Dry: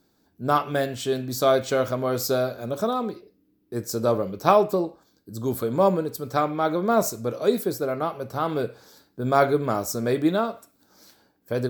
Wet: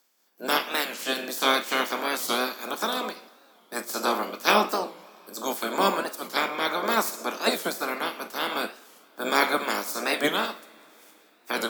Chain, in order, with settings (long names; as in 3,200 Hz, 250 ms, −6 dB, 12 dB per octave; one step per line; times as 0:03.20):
ceiling on every frequency bin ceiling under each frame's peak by 27 dB
Butterworth high-pass 200 Hz 48 dB per octave
notch filter 3,900 Hz, Q 15
coupled-rooms reverb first 0.49 s, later 4.2 s, from −19 dB, DRR 12 dB
wow of a warped record 45 rpm, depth 160 cents
level −2.5 dB